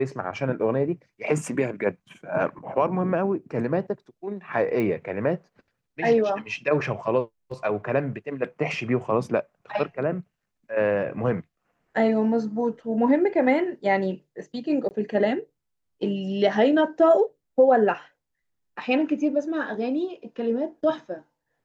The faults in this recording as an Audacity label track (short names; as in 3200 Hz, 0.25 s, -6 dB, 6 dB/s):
4.800000	4.800000	pop -17 dBFS
14.890000	14.910000	gap 19 ms